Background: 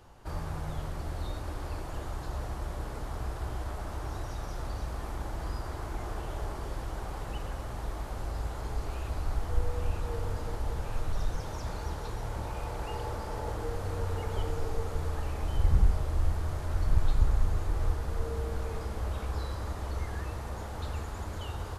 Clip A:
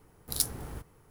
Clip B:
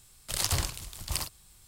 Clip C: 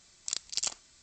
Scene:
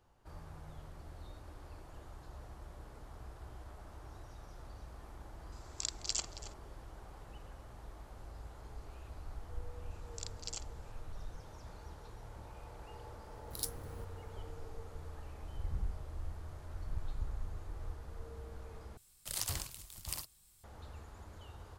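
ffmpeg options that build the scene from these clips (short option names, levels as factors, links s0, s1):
-filter_complex "[3:a]asplit=2[s0][s1];[0:a]volume=0.188[s2];[s0]asplit=2[s3][s4];[s4]adelay=274.1,volume=0.282,highshelf=f=4000:g=-6.17[s5];[s3][s5]amix=inputs=2:normalize=0[s6];[2:a]highshelf=f=8400:g=8[s7];[s2]asplit=2[s8][s9];[s8]atrim=end=18.974[s10];[s7]atrim=end=1.67,asetpts=PTS-STARTPTS,volume=0.266[s11];[s9]atrim=start=20.636[s12];[s6]atrim=end=1.02,asetpts=PTS-STARTPTS,volume=0.596,afade=t=in:d=0.004:c=hsin,afade=t=out:st=1.016:d=0.004:c=hsin,adelay=5520[s13];[s1]atrim=end=1.02,asetpts=PTS-STARTPTS,volume=0.251,afade=t=in:d=0.004:c=hsin,afade=t=out:st=1.016:d=0.004:c=hsin,adelay=9900[s14];[1:a]atrim=end=1.1,asetpts=PTS-STARTPTS,volume=0.299,afade=t=in:d=0.004:c=hsin,afade=t=out:st=1.096:d=0.004:c=hsin,adelay=13230[s15];[s10][s11]acrossfade=d=0.004:c1=hsin:c2=hsin[s16];[s16][s12]acrossfade=d=0.004:c1=hsin:c2=hsin[s17];[s17][s13][s14][s15]amix=inputs=4:normalize=0"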